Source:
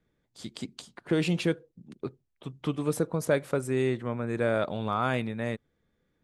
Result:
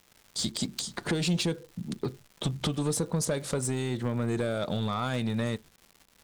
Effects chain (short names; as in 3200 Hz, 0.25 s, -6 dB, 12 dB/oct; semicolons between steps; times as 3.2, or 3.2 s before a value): recorder AGC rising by 6.5 dB/s; gate with hold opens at -54 dBFS; in parallel at -2 dB: limiter -22 dBFS, peak gain reduction 10 dB; on the sum: band shelf 5800 Hz +11 dB; compressor 5:1, threshold -28 dBFS, peak gain reduction 10.5 dB; crackle 290/s -45 dBFS; low shelf 170 Hz +8 dB; soft clip -23 dBFS, distortion -15 dB; on a send at -14.5 dB: reverb RT60 0.15 s, pre-delay 3 ms; on the sum: gain +2 dB